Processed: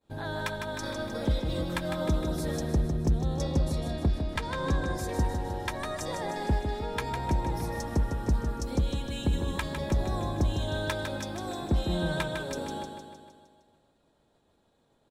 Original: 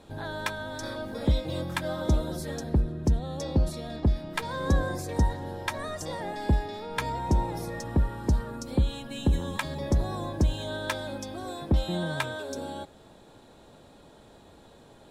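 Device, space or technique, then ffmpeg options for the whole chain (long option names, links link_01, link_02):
limiter into clipper: -filter_complex "[0:a]agate=range=-33dB:threshold=-41dB:ratio=3:detection=peak,asettb=1/sr,asplit=3[link_01][link_02][link_03];[link_01]atrim=end=3.784[link_04];[link_02]atrim=start=3.78:end=4.98,asetpts=PTS-STARTPTS,afade=type=in:duration=0.004:curve=qsin,afade=type=out:start_time=1.196:duration=0.004:curve=qsin,lowpass=9000[link_05];[link_03]atrim=start=4.976[link_06];[link_04][link_05]acrossfade=duration=0.004:curve1=hsin:curve2=qsin[link_07];[link_07][link_06]acrossfade=duration=0.004:curve1=qsin:curve2=hsin,alimiter=limit=-19dB:level=0:latency=1:release=308,asoftclip=type=hard:threshold=-20.5dB,aecho=1:1:154|308|462|616|770|924|1078:0.473|0.27|0.154|0.0876|0.0499|0.0285|0.0162"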